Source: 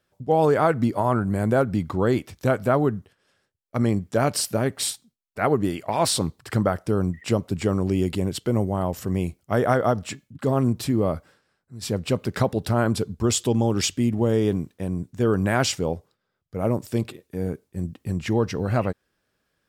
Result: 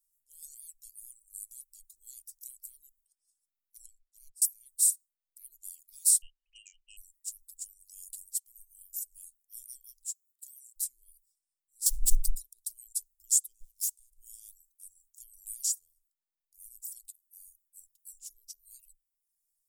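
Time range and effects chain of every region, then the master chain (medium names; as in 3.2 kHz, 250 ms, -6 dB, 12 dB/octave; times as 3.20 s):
3.86–4.42 s: treble shelf 3.1 kHz -10.5 dB + upward expansion 2.5:1, over -35 dBFS
6.22–6.97 s: frequency inversion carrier 3 kHz + transformer saturation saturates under 1 kHz
9.99–10.76 s: high-pass 870 Hz + upward compressor, threshold -52 dBFS
11.86–12.34 s: treble shelf 9.4 kHz -9.5 dB + waveshaping leveller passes 5 + frequency shift -150 Hz
13.60–14.17 s: comb filter that takes the minimum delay 1.7 ms + high-pass 41 Hz 24 dB/octave + compression 4:1, threshold -25 dBFS
whole clip: reverb removal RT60 0.89 s; inverse Chebyshev band-stop 100–1600 Hz, stop band 80 dB; trim +7.5 dB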